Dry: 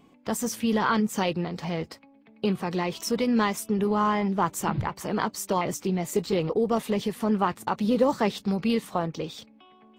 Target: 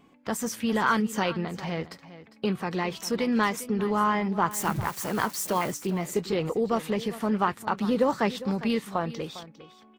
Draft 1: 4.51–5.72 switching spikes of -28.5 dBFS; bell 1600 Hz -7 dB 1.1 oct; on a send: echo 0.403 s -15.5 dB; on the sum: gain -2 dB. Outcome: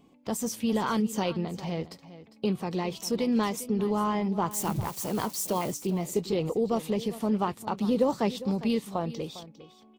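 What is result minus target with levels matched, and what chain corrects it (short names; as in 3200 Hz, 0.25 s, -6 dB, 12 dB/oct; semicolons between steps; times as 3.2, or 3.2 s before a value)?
2000 Hz band -8.0 dB
4.51–5.72 switching spikes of -28.5 dBFS; bell 1600 Hz +5 dB 1.1 oct; on a send: echo 0.403 s -15.5 dB; on the sum: gain -2 dB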